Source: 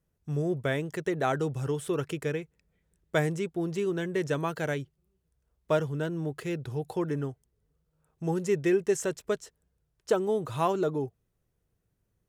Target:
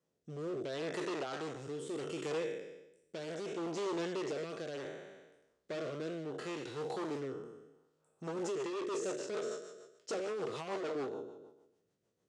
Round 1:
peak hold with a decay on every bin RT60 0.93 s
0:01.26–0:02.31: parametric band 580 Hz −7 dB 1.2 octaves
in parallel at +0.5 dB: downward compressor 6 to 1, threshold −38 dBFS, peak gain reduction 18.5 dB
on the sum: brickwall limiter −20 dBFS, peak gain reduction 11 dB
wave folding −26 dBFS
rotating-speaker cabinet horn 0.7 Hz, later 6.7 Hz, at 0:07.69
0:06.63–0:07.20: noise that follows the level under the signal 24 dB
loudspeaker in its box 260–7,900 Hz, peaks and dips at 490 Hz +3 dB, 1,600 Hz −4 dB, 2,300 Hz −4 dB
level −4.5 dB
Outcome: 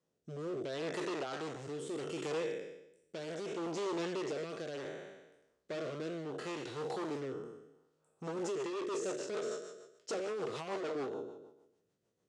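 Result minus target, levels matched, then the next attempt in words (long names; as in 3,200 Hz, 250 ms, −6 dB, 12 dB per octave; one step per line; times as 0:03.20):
downward compressor: peak gain reduction −5.5 dB
peak hold with a decay on every bin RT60 0.93 s
0:01.26–0:02.31: parametric band 580 Hz −7 dB 1.2 octaves
in parallel at +0.5 dB: downward compressor 6 to 1, threshold −44.5 dBFS, peak gain reduction 24 dB
on the sum: brickwall limiter −20 dBFS, peak gain reduction 10 dB
wave folding −26 dBFS
rotating-speaker cabinet horn 0.7 Hz, later 6.7 Hz, at 0:07.69
0:06.63–0:07.20: noise that follows the level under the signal 24 dB
loudspeaker in its box 260–7,900 Hz, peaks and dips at 490 Hz +3 dB, 1,600 Hz −4 dB, 2,300 Hz −4 dB
level −4.5 dB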